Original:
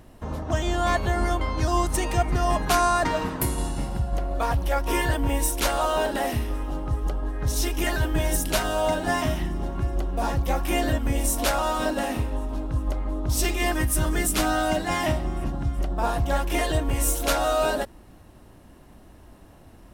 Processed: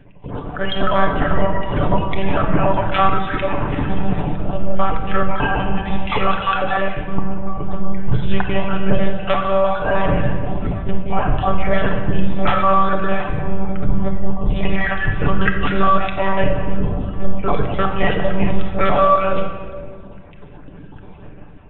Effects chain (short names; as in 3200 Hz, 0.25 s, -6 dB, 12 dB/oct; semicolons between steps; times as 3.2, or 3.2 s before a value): random spectral dropouts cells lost 37%; dynamic EQ 1300 Hz, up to +6 dB, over -45 dBFS, Q 3.7; in parallel at -11 dB: soft clip -22.5 dBFS, distortion -12 dB; on the sum: monotone LPC vocoder at 8 kHz 210 Hz; speed mistake 48 kHz file played as 44.1 kHz; on a send at -2 dB: reverb RT60 1.6 s, pre-delay 7 ms; on the sum: AGC gain up to 7 dB